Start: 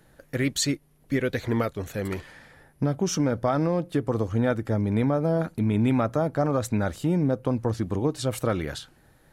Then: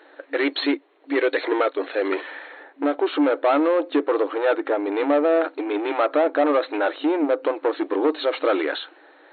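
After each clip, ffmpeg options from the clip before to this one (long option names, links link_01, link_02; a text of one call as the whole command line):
ffmpeg -i in.wav -filter_complex "[0:a]lowshelf=frequency=370:gain=5.5,asplit=2[link_01][link_02];[link_02]highpass=frequency=720:poles=1,volume=20dB,asoftclip=type=tanh:threshold=-9dB[link_03];[link_01][link_03]amix=inputs=2:normalize=0,lowpass=frequency=2300:poles=1,volume=-6dB,afftfilt=real='re*between(b*sr/4096,270,4300)':imag='im*between(b*sr/4096,270,4300)':win_size=4096:overlap=0.75" out.wav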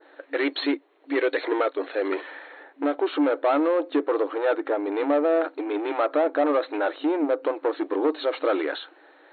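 ffmpeg -i in.wav -af "adynamicequalizer=threshold=0.00794:dfrequency=2800:dqfactor=0.95:tfrequency=2800:tqfactor=0.95:attack=5:release=100:ratio=0.375:range=1.5:mode=cutabove:tftype=bell,volume=-2.5dB" out.wav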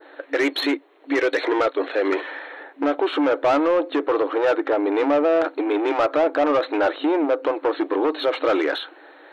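ffmpeg -i in.wav -filter_complex "[0:a]acrossover=split=670[link_01][link_02];[link_01]alimiter=limit=-22.5dB:level=0:latency=1:release=74[link_03];[link_02]asoftclip=type=tanh:threshold=-25dB[link_04];[link_03][link_04]amix=inputs=2:normalize=0,volume=7dB" out.wav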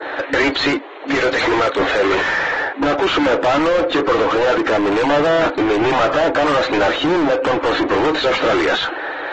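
ffmpeg -i in.wav -filter_complex "[0:a]asplit=2[link_01][link_02];[link_02]highpass=frequency=720:poles=1,volume=30dB,asoftclip=type=tanh:threshold=-10.5dB[link_03];[link_01][link_03]amix=inputs=2:normalize=0,lowpass=frequency=2600:poles=1,volume=-6dB" -ar 48000 -c:a aac -b:a 24k out.aac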